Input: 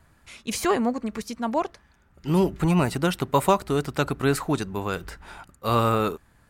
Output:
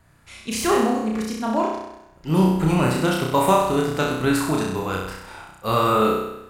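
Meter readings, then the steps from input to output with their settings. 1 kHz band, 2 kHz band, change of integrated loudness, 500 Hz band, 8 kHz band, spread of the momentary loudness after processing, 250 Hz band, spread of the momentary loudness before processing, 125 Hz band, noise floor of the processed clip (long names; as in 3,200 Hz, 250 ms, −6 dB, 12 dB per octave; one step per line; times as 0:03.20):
+4.0 dB, +4.0 dB, +4.0 dB, +3.5 dB, +4.0 dB, 15 LU, +4.0 dB, 12 LU, +2.0 dB, −51 dBFS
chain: flutter between parallel walls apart 5.5 metres, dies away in 0.87 s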